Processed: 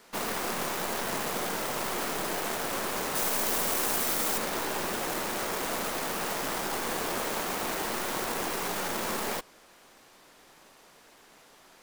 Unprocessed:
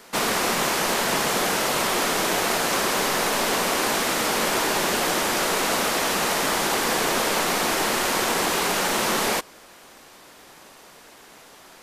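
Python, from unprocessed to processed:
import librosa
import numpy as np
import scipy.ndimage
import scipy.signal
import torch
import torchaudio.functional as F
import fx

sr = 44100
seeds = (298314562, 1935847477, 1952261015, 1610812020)

y = fx.tracing_dist(x, sr, depth_ms=0.36)
y = fx.high_shelf(y, sr, hz=5700.0, db=9.5, at=(3.15, 4.38))
y = F.gain(torch.from_numpy(y), -8.5).numpy()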